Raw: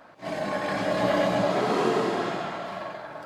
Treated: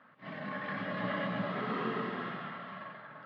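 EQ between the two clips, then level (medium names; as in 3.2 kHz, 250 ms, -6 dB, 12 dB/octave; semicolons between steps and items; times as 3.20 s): cabinet simulation 190–2600 Hz, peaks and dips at 200 Hz -3 dB, 310 Hz -10 dB, 680 Hz -6 dB, 980 Hz -6 dB, 1.5 kHz -7 dB, 2.4 kHz -10 dB; high-order bell 540 Hz -11 dB; 0.0 dB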